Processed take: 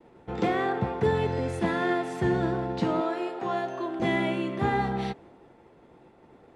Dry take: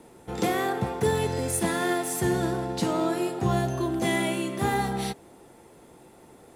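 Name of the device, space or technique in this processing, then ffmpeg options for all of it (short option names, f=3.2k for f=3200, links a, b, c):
hearing-loss simulation: -filter_complex "[0:a]lowpass=2.9k,agate=range=-33dB:threshold=-48dB:ratio=3:detection=peak,asettb=1/sr,asplit=3[a][b][c];[a]atrim=end=3.014[d];[b]atrim=start=3.01:end=4,asetpts=PTS-STARTPTS,afade=t=in:d=0.004:c=qsin,afade=t=out:st=0.986:d=0.004:c=qsin,highpass=410[e];[c]atrim=start=3.996[f];[d][e]acrossfade=d=0.004:c1=hsin:c2=qsin[g];[g][f]acrossfade=d=0.004:c1=qsin:c2=hsin"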